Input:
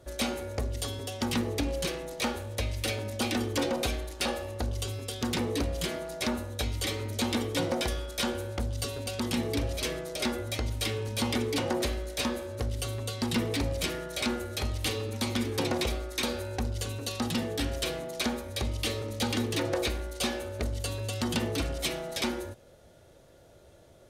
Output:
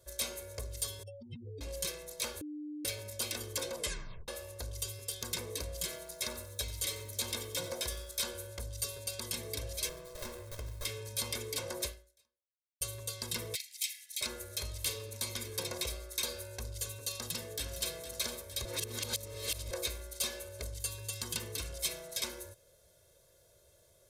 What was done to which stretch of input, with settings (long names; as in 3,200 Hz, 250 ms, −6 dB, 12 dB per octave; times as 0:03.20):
0:01.03–0:01.61: expanding power law on the bin magnitudes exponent 3.8
0:02.41–0:02.85: beep over 299 Hz −18.5 dBFS
0:03.76: tape stop 0.52 s
0:05.79–0:08.16: feedback echo at a low word length 92 ms, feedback 35%, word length 9 bits, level −15 dB
0:09.89–0:10.85: windowed peak hold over 17 samples
0:11.86–0:12.81: fade out exponential
0:13.55–0:14.21: Butterworth high-pass 1,900 Hz 72 dB per octave
0:17.20–0:17.95: delay throw 460 ms, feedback 65%, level −10.5 dB
0:18.65–0:19.71: reverse
0:20.74–0:21.73: parametric band 610 Hz −8 dB 0.38 octaves
whole clip: first-order pre-emphasis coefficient 0.8; notch filter 2,900 Hz, Q 8.7; comb filter 1.9 ms, depth 69%